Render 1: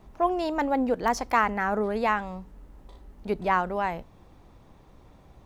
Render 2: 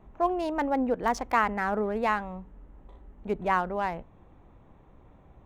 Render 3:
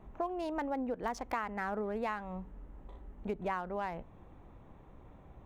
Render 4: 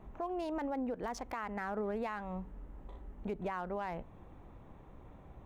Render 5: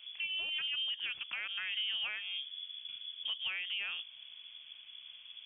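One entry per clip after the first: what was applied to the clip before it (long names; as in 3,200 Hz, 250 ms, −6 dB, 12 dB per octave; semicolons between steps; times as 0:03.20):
adaptive Wiener filter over 9 samples; level −1.5 dB
downward compressor 4 to 1, threshold −34 dBFS, peak gain reduction 13.5 dB
brickwall limiter −30 dBFS, peak gain reduction 7 dB; level +1 dB
voice inversion scrambler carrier 3,400 Hz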